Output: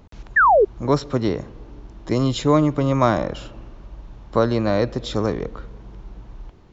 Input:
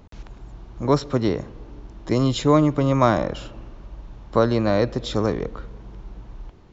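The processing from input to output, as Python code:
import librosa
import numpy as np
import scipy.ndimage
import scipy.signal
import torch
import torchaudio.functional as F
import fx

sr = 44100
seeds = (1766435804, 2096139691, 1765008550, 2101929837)

y = fx.spec_paint(x, sr, seeds[0], shape='fall', start_s=0.36, length_s=0.29, low_hz=370.0, high_hz=1900.0, level_db=-13.0)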